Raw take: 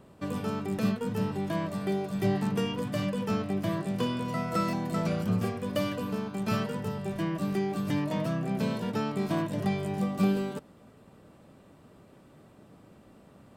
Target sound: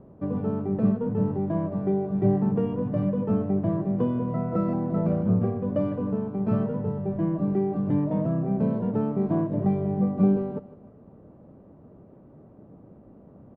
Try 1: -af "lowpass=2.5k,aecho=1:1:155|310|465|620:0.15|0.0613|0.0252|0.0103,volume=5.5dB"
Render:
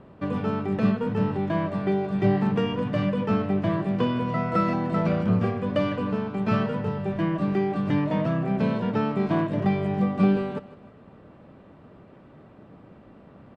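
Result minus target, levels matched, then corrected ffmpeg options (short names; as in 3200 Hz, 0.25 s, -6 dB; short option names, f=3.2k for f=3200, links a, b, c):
2000 Hz band +15.5 dB
-af "lowpass=670,aecho=1:1:155|310|465|620:0.15|0.0613|0.0252|0.0103,volume=5.5dB"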